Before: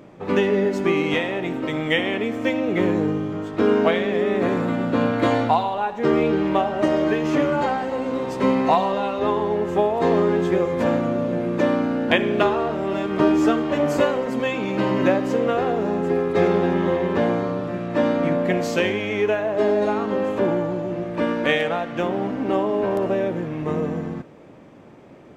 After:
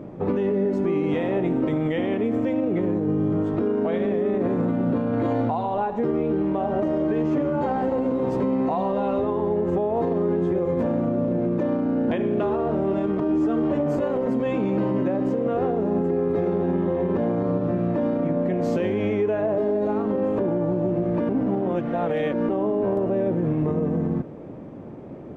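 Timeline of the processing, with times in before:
21.29–22.49 reverse
whole clip: compressor 2.5:1, threshold -26 dBFS; tilt shelf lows +9.5 dB, about 1200 Hz; limiter -15.5 dBFS

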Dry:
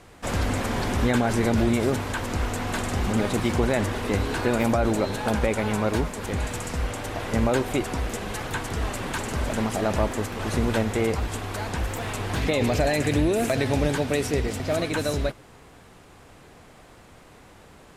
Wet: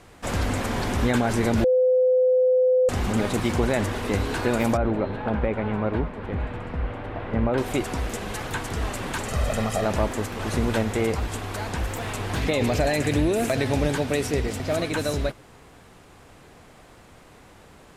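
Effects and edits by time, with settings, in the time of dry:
1.64–2.89 bleep 509 Hz -15.5 dBFS
4.77–7.58 air absorption 480 m
9.27–9.85 comb 1.6 ms, depth 59%

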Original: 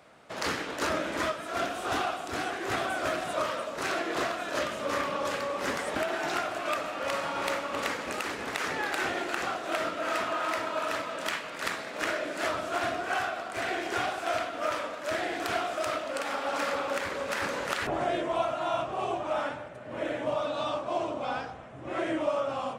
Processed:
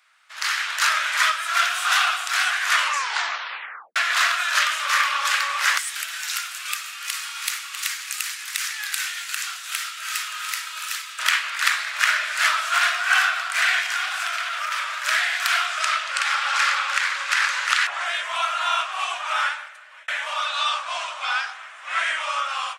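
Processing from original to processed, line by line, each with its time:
2.63 tape stop 1.33 s
5.78–11.19 differentiator
13.8–14.97 compressor 10:1, threshold -32 dBFS
15.66–18.06 LPF 8700 Hz
19.47–20.08 fade out
whole clip: HPF 1300 Hz 24 dB/oct; AGC gain up to 16 dB

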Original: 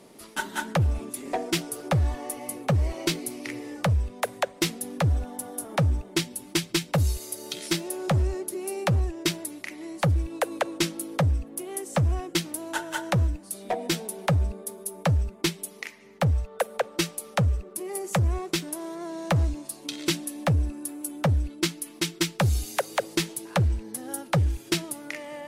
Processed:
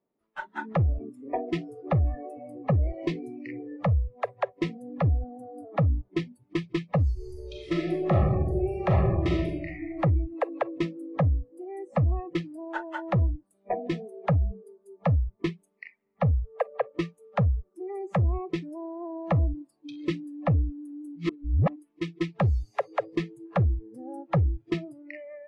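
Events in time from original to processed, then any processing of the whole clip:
7.12–9.94 reverb throw, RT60 1.5 s, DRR -2.5 dB
21.16–21.76 reverse
whole clip: spectral noise reduction 25 dB; AGC gain up to 4.5 dB; LPF 1600 Hz 12 dB/oct; gain -5 dB

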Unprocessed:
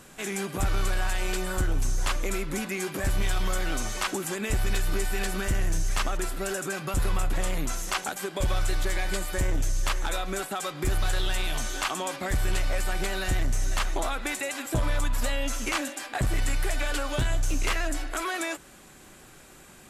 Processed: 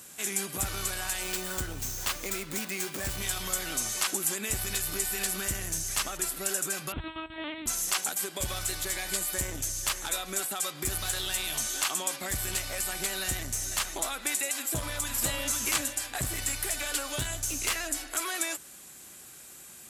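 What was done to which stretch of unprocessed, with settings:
1.23–3.18 running maximum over 3 samples
6.92–7.66 LPC vocoder at 8 kHz pitch kept
14.55–15.25 echo throw 0.51 s, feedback 35%, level -3.5 dB
whole clip: HPF 59 Hz 12 dB/oct; pre-emphasis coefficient 0.8; gain +7 dB

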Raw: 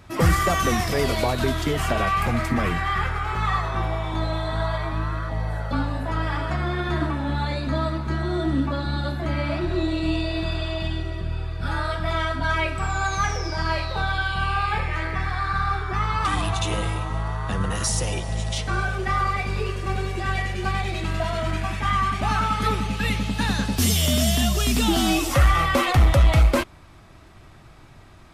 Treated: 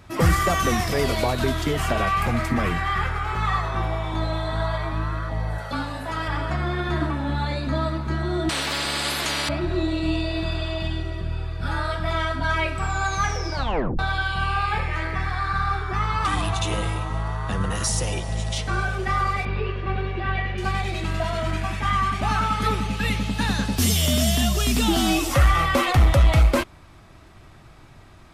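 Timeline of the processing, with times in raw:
5.58–6.28 tilt +2 dB/oct
8.49–9.49 spectral compressor 10:1
13.54 tape stop 0.45 s
19.45–20.58 LPF 3500 Hz 24 dB/oct

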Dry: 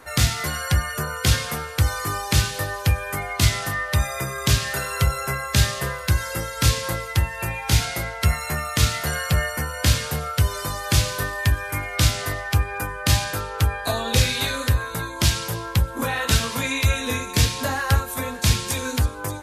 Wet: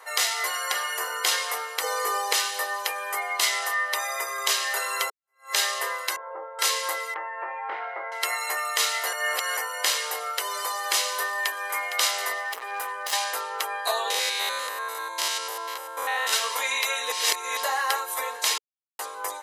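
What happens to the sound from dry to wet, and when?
0.64–1.14 reverb throw, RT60 0.99 s, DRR 4.5 dB
1.83–2.33 bell 470 Hz +15 dB 0.37 oct
3.67–4.39 Bessel high-pass 240 Hz
5.1–5.53 fade in exponential
6.16–6.59 LPF 1100 Hz 24 dB/oct
7.14–8.12 LPF 1700 Hz 24 dB/oct
9.13–9.57 reverse
11.23–11.81 echo throw 0.46 s, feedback 15%, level -9.5 dB
12.45–13.13 overloaded stage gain 25.5 dB
14.1–16.33 stepped spectrum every 0.1 s
17.12–17.57 reverse
18.58–18.99 mute
whole clip: elliptic high-pass 440 Hz, stop band 60 dB; comb 1 ms, depth 38%

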